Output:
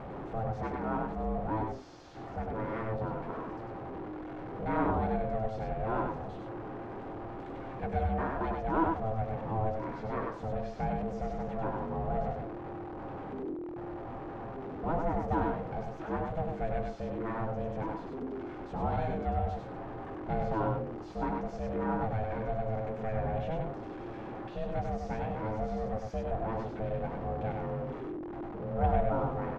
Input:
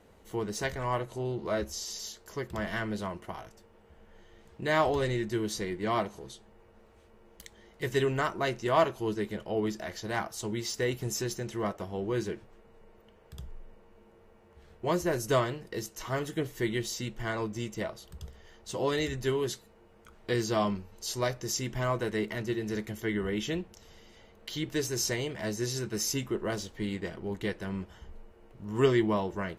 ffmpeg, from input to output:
ffmpeg -i in.wav -filter_complex "[0:a]aeval=exprs='val(0)+0.5*0.0299*sgn(val(0))':channel_layout=same,aeval=exprs='val(0)*sin(2*PI*330*n/s)':channel_layout=same,lowpass=1100,asplit=2[link_01][link_02];[link_02]aecho=0:1:98:0.668[link_03];[link_01][link_03]amix=inputs=2:normalize=0,volume=-2dB" out.wav

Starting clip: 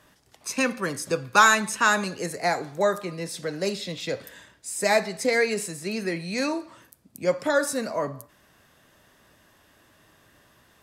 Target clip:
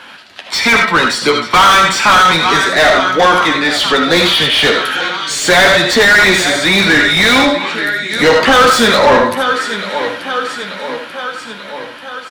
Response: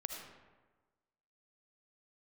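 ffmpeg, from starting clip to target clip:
-filter_complex "[0:a]equalizer=frequency=125:width_type=o:width=1:gain=-5,equalizer=frequency=250:width_type=o:width=1:gain=4,equalizer=frequency=500:width_type=o:width=1:gain=-4,equalizer=frequency=2000:width_type=o:width=1:gain=4,equalizer=frequency=4000:width_type=o:width=1:gain=10,equalizer=frequency=8000:width_type=o:width=1:gain=-5,dynaudnorm=framelen=220:gausssize=17:maxgain=9.5dB,aecho=1:1:781|1562|2343|3124|3905:0.112|0.0651|0.0377|0.0219|0.0127,flanger=delay=8.8:depth=3.5:regen=-29:speed=0.34:shape=sinusoidal,asetrate=38808,aresample=44100[link_01];[1:a]atrim=start_sample=2205,atrim=end_sample=4410[link_02];[link_01][link_02]afir=irnorm=-1:irlink=0,asplit=2[link_03][link_04];[link_04]highpass=frequency=720:poles=1,volume=32dB,asoftclip=type=tanh:threshold=-4dB[link_05];[link_03][link_05]amix=inputs=2:normalize=0,lowpass=frequency=2300:poles=1,volume=-6dB,volume=5dB"

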